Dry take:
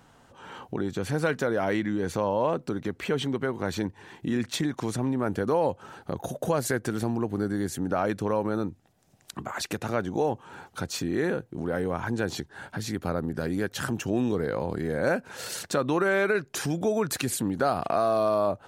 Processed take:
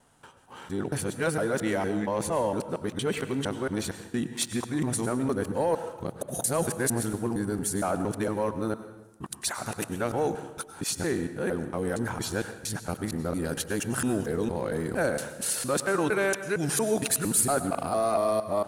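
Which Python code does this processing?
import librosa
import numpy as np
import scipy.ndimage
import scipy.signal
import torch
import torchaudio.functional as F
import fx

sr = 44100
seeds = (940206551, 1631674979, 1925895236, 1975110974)

y = fx.local_reverse(x, sr, ms=230.0)
y = fx.peak_eq(y, sr, hz=9800.0, db=14.5, octaves=0.66)
y = fx.leveller(y, sr, passes=1)
y = fx.rev_plate(y, sr, seeds[0], rt60_s=1.0, hf_ratio=0.8, predelay_ms=85, drr_db=10.5)
y = y * 10.0 ** (-5.0 / 20.0)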